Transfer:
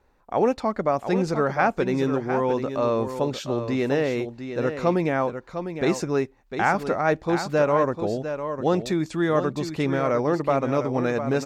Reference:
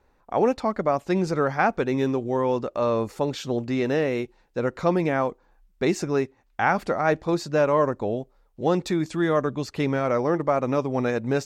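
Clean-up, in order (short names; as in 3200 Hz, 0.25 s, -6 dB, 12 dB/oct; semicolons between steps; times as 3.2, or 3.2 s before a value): inverse comb 0.703 s -9 dB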